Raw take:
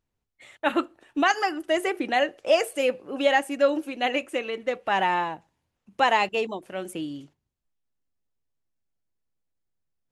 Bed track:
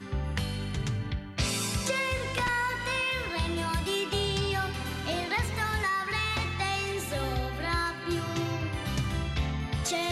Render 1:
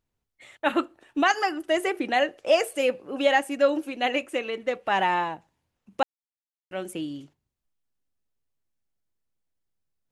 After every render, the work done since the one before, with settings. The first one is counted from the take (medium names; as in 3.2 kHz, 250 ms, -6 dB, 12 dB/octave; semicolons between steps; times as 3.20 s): 6.03–6.71 s: mute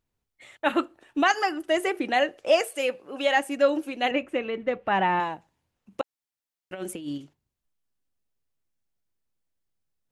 2.61–3.37 s: bass shelf 430 Hz -8 dB; 4.11–5.20 s: tone controls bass +8 dB, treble -15 dB; 6.01–7.18 s: compressor with a negative ratio -34 dBFS, ratio -0.5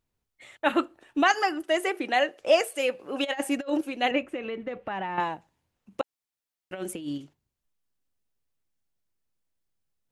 1.64–2.40 s: high-pass 320 Hz 6 dB/octave; 2.99–3.81 s: compressor with a negative ratio -27 dBFS, ratio -0.5; 4.34–5.18 s: compression, threshold -29 dBFS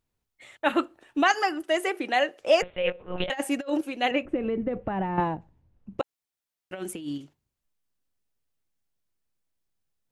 2.62–3.30 s: monotone LPC vocoder at 8 kHz 180 Hz; 4.25–6.00 s: tilt EQ -4.5 dB/octave; 6.79–7.19 s: peaking EQ 560 Hz -8 dB 0.27 oct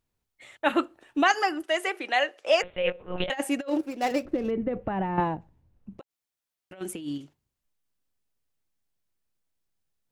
1.66–2.64 s: frequency weighting A; 3.68–4.51 s: median filter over 15 samples; 5.91–6.81 s: compression 12:1, threshold -41 dBFS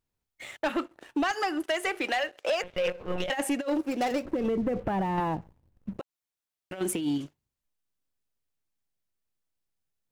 compression 8:1, threshold -30 dBFS, peak gain reduction 14 dB; waveshaping leveller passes 2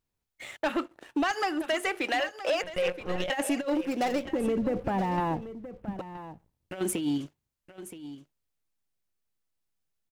delay 973 ms -13.5 dB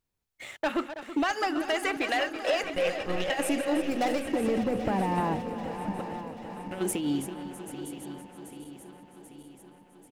backward echo that repeats 393 ms, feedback 77%, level -12 dB; on a send: feedback delay 327 ms, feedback 55%, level -13 dB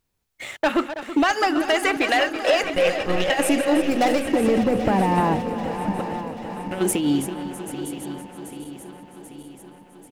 trim +8 dB